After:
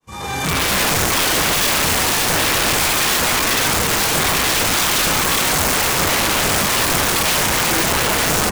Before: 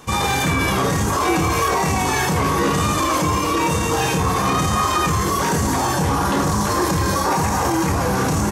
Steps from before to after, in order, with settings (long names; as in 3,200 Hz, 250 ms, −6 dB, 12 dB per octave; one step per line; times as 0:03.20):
fade in at the beginning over 0.76 s
dynamic equaliser 1,200 Hz, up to +3 dB, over −31 dBFS, Q 2.2
wrap-around overflow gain 15 dB
level +3 dB